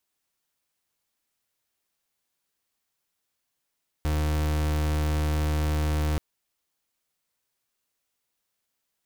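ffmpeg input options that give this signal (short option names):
-f lavfi -i "aevalsrc='0.0562*(2*lt(mod(76.1*t,1),0.37)-1)':d=2.13:s=44100"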